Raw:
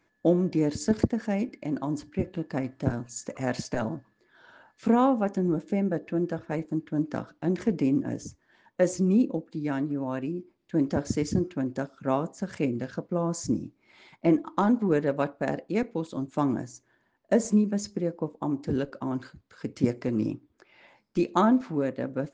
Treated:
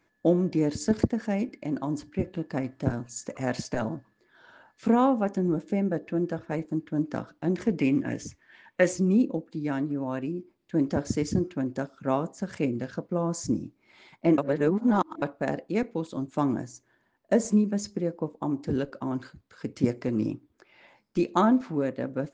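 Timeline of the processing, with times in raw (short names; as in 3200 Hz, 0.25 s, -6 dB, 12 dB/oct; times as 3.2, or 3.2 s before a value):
7.8–8.93 bell 2300 Hz +12.5 dB 1.3 oct
14.38–15.22 reverse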